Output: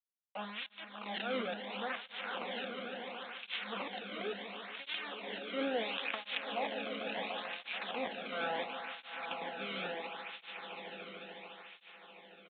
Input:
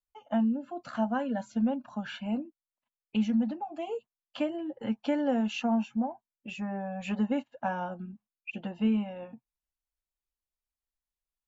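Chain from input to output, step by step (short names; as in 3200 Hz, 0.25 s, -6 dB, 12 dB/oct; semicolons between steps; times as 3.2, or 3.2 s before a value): level-crossing sampler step -33.5 dBFS; HPF 360 Hz 12 dB/oct; tilt shelf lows -8 dB, about 1500 Hz; notch 670 Hz, Q 12; transient shaper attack -5 dB, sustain +12 dB; harmonic tremolo 2.3 Hz, crossover 2000 Hz; swelling echo 0.134 s, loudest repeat 5, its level -10.5 dB; speed mistake 48 kHz file played as 44.1 kHz; downsampling 8000 Hz; tape flanging out of phase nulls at 0.72 Hz, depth 1.2 ms; gain +5.5 dB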